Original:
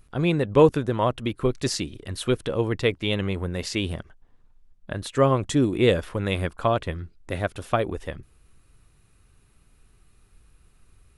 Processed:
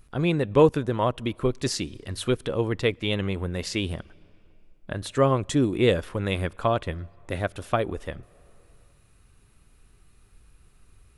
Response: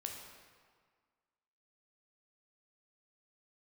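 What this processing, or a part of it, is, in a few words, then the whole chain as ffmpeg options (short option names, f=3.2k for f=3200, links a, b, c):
ducked reverb: -filter_complex "[0:a]asplit=3[a][b][c];[1:a]atrim=start_sample=2205[d];[b][d]afir=irnorm=-1:irlink=0[e];[c]apad=whole_len=492782[f];[e][f]sidechaincompress=threshold=-36dB:ratio=10:attack=21:release=716,volume=-6.5dB[g];[a][g]amix=inputs=2:normalize=0,volume=-1.5dB"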